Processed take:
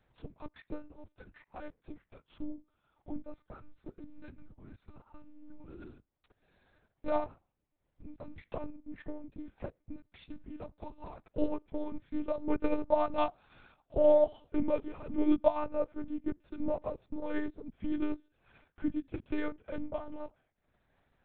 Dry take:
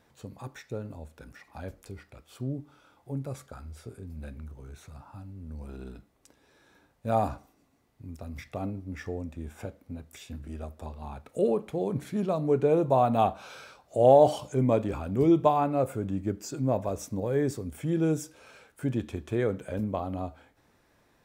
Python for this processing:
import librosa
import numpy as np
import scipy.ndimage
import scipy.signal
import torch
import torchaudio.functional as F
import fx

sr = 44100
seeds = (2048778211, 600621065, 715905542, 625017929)

y = fx.transient(x, sr, attack_db=6, sustain_db=-11)
y = fx.lpc_monotone(y, sr, seeds[0], pitch_hz=300.0, order=8)
y = y * 10.0 ** (-7.0 / 20.0)